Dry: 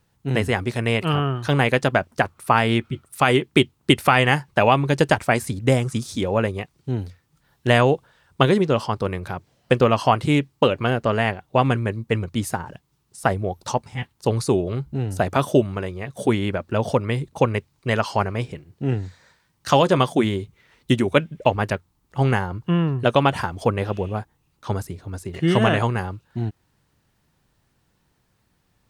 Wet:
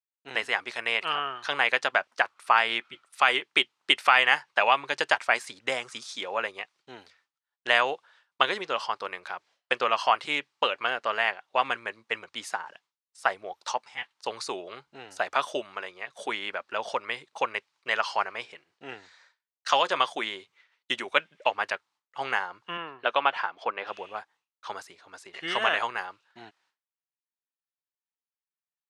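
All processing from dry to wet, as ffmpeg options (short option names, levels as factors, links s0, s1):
-filter_complex "[0:a]asettb=1/sr,asplit=3[s0][s1][s2];[s0]atrim=end=22.774[s3];[s1]atrim=start=22.77:end=23.87,asetpts=PTS-STARTPTS,afade=t=in:d=0.004:c=qsin,afade=t=out:st=1.096:d=0.004:c=qsin,highpass=170,lowpass=3200,bandreject=f=1900:w=21[s4];[s2]atrim=start=23.866[s5];[s3][s4]acrossfade=d=0.004:c1=hsin:c2=qsin[s6];[s6][s5]acrossfade=d=0.004:c1=qsin:c2=hsin,lowpass=5400,agate=range=0.0224:threshold=0.00447:ratio=3:detection=peak,highpass=1000"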